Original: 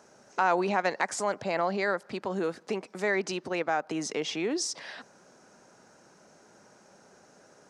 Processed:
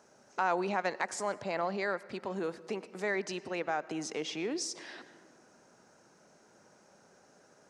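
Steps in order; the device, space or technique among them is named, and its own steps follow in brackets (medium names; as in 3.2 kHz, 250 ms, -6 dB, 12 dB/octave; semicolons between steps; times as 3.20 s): compressed reverb return (on a send at -10 dB: reverberation RT60 1.4 s, pre-delay 88 ms + compression 5:1, threshold -35 dBFS, peak gain reduction 12.5 dB); on the sum: trim -5 dB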